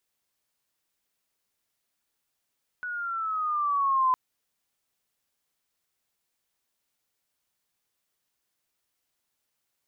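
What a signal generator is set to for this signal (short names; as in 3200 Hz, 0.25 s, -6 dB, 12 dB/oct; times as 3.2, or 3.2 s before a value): gliding synth tone sine, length 1.31 s, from 1480 Hz, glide -6.5 st, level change +12 dB, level -19 dB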